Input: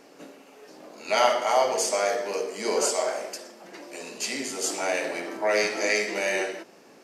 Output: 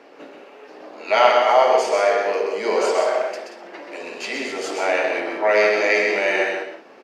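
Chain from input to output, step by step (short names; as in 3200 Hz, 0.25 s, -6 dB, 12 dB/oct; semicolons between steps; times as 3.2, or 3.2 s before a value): three-band isolator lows -14 dB, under 280 Hz, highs -20 dB, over 3800 Hz; loudspeakers at several distances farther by 44 m -5 dB, 62 m -10 dB; gain +6.5 dB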